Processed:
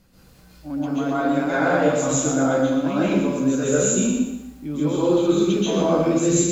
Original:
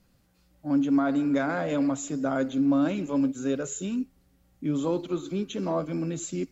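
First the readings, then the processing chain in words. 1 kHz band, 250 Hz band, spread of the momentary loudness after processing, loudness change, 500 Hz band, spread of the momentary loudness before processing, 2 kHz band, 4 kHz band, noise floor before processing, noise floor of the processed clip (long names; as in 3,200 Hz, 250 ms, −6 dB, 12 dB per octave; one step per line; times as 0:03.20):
+8.5 dB, +5.0 dB, 7 LU, +7.0 dB, +10.0 dB, 8 LU, +9.5 dB, +11.0 dB, −65 dBFS, −50 dBFS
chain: reversed playback
downward compressor, threshold −32 dBFS, peak gain reduction 12 dB
reversed playback
dense smooth reverb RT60 0.7 s, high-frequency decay 0.9×, pre-delay 120 ms, DRR −8.5 dB
feedback echo at a low word length 120 ms, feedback 35%, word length 10 bits, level −7 dB
level +6.5 dB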